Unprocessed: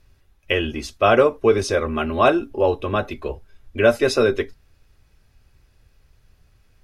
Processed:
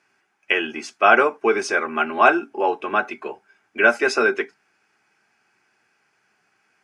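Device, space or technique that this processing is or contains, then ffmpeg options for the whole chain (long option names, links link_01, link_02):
television speaker: -af "highpass=frequency=230:width=0.5412,highpass=frequency=230:width=1.3066,equalizer=frequency=270:width_type=q:width=4:gain=-6,equalizer=frequency=530:width_type=q:width=4:gain=-10,equalizer=frequency=810:width_type=q:width=4:gain=7,equalizer=frequency=1500:width_type=q:width=4:gain=9,equalizer=frequency=2300:width_type=q:width=4:gain=6,equalizer=frequency=3800:width_type=q:width=4:gain=-10,lowpass=frequency=9000:width=0.5412,lowpass=frequency=9000:width=1.3066"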